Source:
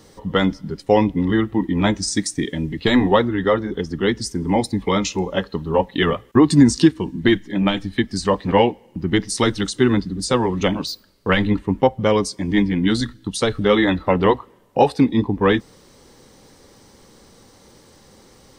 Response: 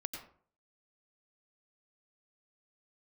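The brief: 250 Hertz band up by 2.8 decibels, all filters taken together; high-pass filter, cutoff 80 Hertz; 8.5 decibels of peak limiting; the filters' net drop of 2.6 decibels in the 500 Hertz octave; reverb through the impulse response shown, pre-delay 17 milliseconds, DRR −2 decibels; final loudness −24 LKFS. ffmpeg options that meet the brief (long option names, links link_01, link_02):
-filter_complex "[0:a]highpass=80,equalizer=frequency=250:width_type=o:gain=5,equalizer=frequency=500:width_type=o:gain=-5,alimiter=limit=-8dB:level=0:latency=1,asplit=2[link_01][link_02];[1:a]atrim=start_sample=2205,adelay=17[link_03];[link_02][link_03]afir=irnorm=-1:irlink=0,volume=2.5dB[link_04];[link_01][link_04]amix=inputs=2:normalize=0,volume=-8.5dB"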